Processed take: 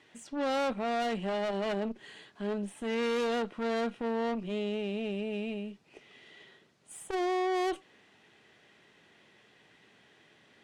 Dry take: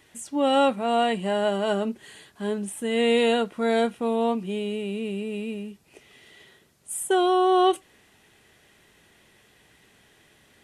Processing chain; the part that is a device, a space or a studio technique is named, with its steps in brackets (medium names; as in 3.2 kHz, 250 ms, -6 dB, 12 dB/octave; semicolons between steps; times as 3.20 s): valve radio (band-pass 140–4800 Hz; valve stage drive 27 dB, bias 0.55; transformer saturation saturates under 200 Hz)